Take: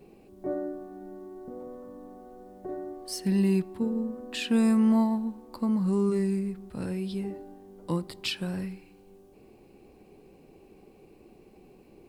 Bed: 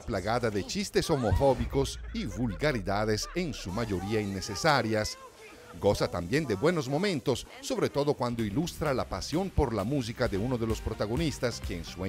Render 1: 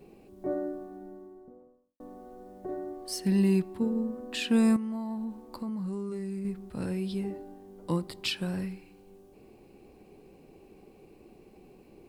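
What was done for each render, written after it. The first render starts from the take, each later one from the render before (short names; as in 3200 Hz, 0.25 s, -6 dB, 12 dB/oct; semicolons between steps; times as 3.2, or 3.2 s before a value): 0.67–2 studio fade out; 4.76–6.45 compressor 16:1, threshold -31 dBFS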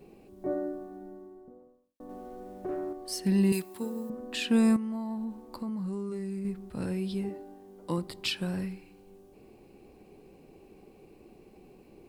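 2.09–2.93 sample leveller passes 1; 3.52–4.1 RIAA curve recording; 7.29–7.98 low shelf 140 Hz -9 dB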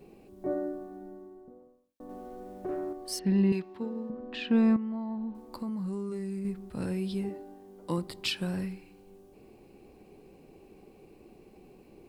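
3.19–5.35 air absorption 250 m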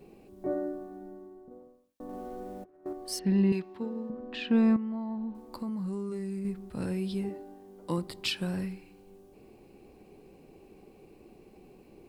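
1.51–2.86 negative-ratio compressor -43 dBFS, ratio -0.5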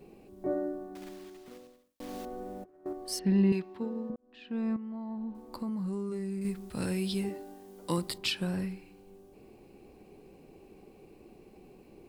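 0.95–2.26 block floating point 3-bit; 4.16–5.52 fade in; 6.41–8.18 high shelf 2000 Hz +10 dB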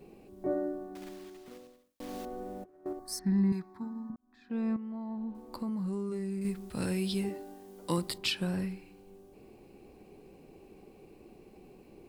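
2.99–4.5 fixed phaser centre 1200 Hz, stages 4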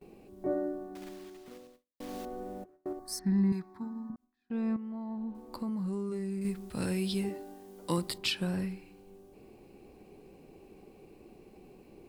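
gate with hold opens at -48 dBFS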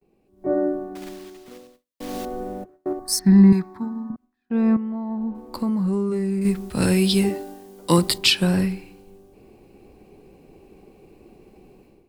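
AGC gain up to 12 dB; three-band expander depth 40%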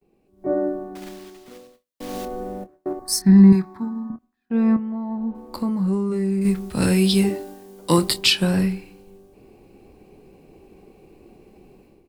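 doubler 26 ms -12 dB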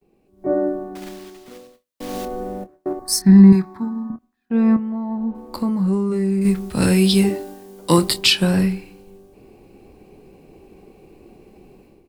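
gain +2.5 dB; limiter -2 dBFS, peak gain reduction 1.5 dB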